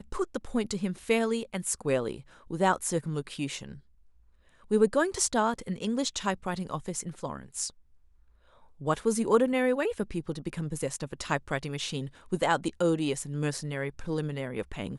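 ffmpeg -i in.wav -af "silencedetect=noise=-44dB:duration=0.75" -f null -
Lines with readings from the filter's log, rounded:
silence_start: 3.79
silence_end: 4.71 | silence_duration: 0.92
silence_start: 7.70
silence_end: 8.80 | silence_duration: 1.11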